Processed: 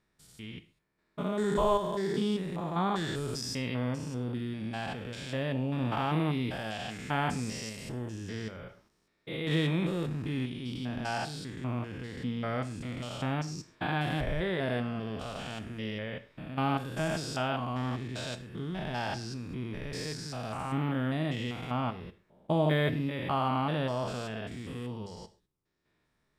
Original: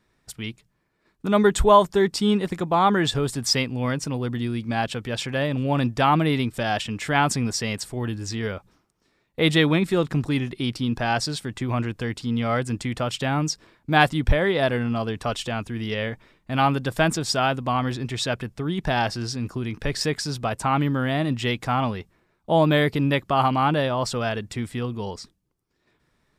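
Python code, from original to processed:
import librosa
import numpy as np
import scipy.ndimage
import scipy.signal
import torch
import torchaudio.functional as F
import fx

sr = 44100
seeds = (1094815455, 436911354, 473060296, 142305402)

y = fx.spec_steps(x, sr, hold_ms=200)
y = fx.rev_gated(y, sr, seeds[0], gate_ms=160, shape='falling', drr_db=10.0)
y = fx.transient(y, sr, attack_db=-5, sustain_db=6, at=(8.55, 9.52))
y = y * 10.0 ** (-7.0 / 20.0)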